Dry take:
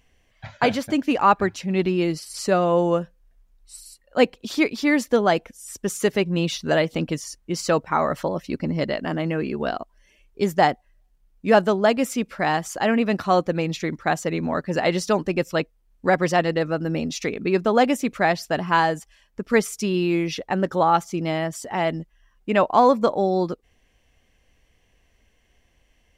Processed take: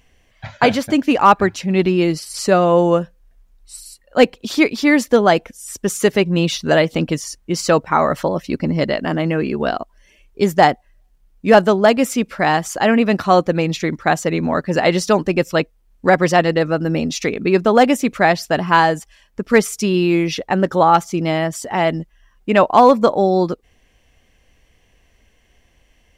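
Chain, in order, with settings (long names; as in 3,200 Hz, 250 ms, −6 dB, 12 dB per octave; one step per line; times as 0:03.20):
gain into a clipping stage and back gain 7.5 dB
level +6 dB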